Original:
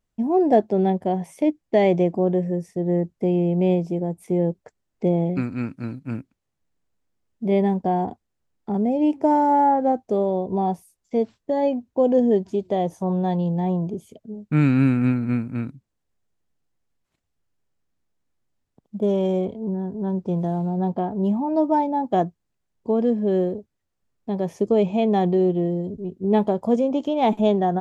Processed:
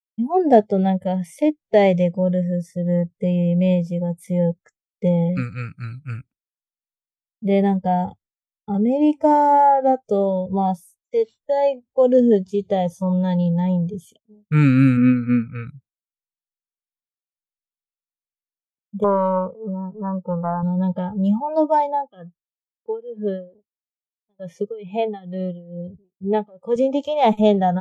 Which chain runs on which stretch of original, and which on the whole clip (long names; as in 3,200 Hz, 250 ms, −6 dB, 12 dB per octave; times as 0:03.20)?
0:14.97–0:15.67: low-pass filter 3,400 Hz + notch filter 740 Hz, Q 5.8 + comb filter 4 ms, depth 37%
0:19.04–0:20.63: phase distortion by the signal itself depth 0.31 ms + low-pass with resonance 1,100 Hz, resonance Q 2.2 + parametric band 83 Hz −15 dB 1.5 octaves
0:21.95–0:26.76: low-pass filter 2,500 Hz 6 dB per octave + low-shelf EQ 250 Hz −6.5 dB + amplitude tremolo 2.3 Hz, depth 86%
whole clip: noise reduction from a noise print of the clip's start 19 dB; downward expander −51 dBFS; level +4 dB